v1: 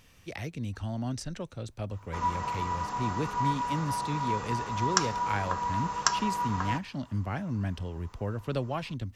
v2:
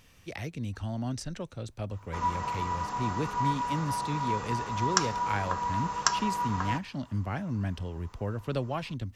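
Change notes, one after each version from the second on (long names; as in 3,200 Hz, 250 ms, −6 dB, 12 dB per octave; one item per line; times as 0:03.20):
nothing changed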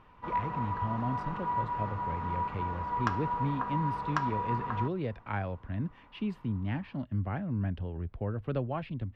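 background: entry −1.90 s
master: add high-frequency loss of the air 490 metres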